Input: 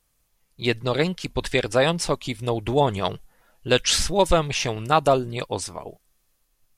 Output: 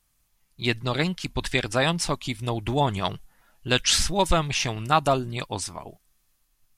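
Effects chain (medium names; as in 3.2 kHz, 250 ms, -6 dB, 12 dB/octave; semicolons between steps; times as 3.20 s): peaking EQ 480 Hz -8.5 dB 0.74 oct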